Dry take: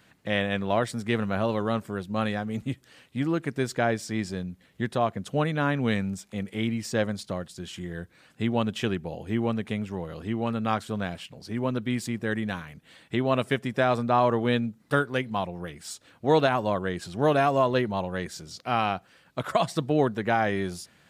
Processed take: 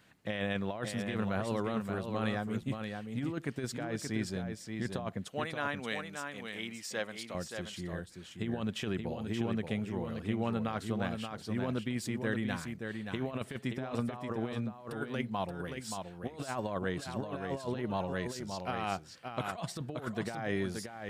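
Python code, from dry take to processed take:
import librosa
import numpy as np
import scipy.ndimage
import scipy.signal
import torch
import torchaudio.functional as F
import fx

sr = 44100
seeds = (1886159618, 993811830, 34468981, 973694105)

y = fx.highpass(x, sr, hz=930.0, slope=6, at=(5.28, 7.35))
y = fx.over_compress(y, sr, threshold_db=-27.0, ratio=-0.5)
y = y + 10.0 ** (-6.0 / 20.0) * np.pad(y, (int(577 * sr / 1000.0), 0))[:len(y)]
y = y * 10.0 ** (-7.0 / 20.0)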